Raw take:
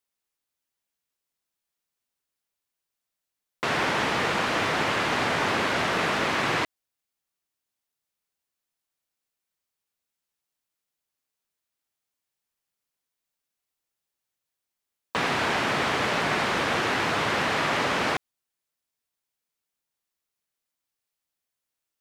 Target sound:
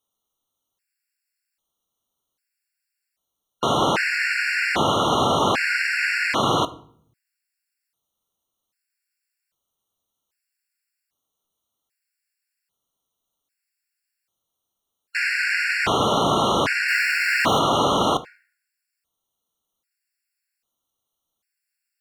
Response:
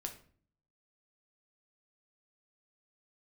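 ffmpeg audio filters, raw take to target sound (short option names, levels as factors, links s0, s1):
-filter_complex "[0:a]asettb=1/sr,asplit=3[s0][s1][s2];[s0]atrim=end=16.884[s3];[s1]atrim=start=16.88:end=17.59,asetpts=PTS-STARTPTS,afade=t=in:d=0.004:c=qsin,afade=t=out:st=0.706:d=0.004:c=qsin,aeval=exprs='val(0)+0.5*0.0251*sgn(val(0))':c=same[s4];[s2]atrim=start=17.586[s5];[s3][s4]acrossfade=d=0.004:c1=hsin:c2=qsin[s6];[s6][s5]acrossfade=d=0.004:c1=qsin:c2=hsin,acontrast=80,asplit=2[s7][s8];[1:a]atrim=start_sample=2205,asetrate=33075,aresample=44100[s9];[s8][s9]afir=irnorm=-1:irlink=0,volume=0.501[s10];[s7][s10]amix=inputs=2:normalize=0,afftfilt=real='re*gt(sin(2*PI*0.63*pts/sr)*(1-2*mod(floor(b*sr/1024/1400),2)),0)':imag='im*gt(sin(2*PI*0.63*pts/sr)*(1-2*mod(floor(b*sr/1024/1400),2)),0)':win_size=1024:overlap=0.75,volume=0.75"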